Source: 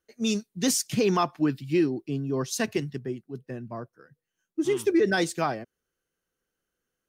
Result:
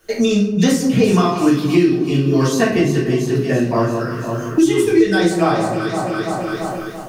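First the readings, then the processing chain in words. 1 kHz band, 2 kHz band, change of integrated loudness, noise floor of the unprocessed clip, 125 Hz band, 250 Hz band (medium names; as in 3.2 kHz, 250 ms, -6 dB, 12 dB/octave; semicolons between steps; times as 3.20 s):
+11.0 dB, +10.0 dB, +10.0 dB, -85 dBFS, +15.0 dB, +13.0 dB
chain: level rider gain up to 9.5 dB; echo whose repeats swap between lows and highs 169 ms, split 1.2 kHz, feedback 59%, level -10 dB; simulated room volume 68 m³, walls mixed, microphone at 1.6 m; three bands compressed up and down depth 100%; trim -7 dB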